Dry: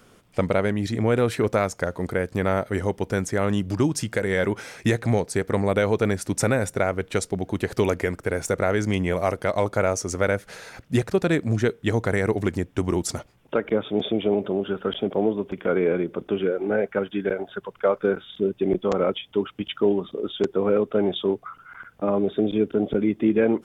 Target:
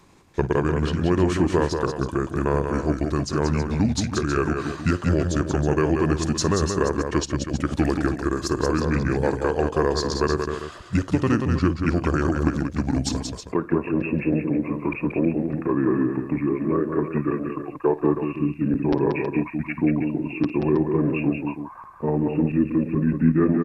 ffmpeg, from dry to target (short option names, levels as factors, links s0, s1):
-af "asetrate=33038,aresample=44100,atempo=1.33484,aecho=1:1:54|182|320:0.141|0.531|0.299"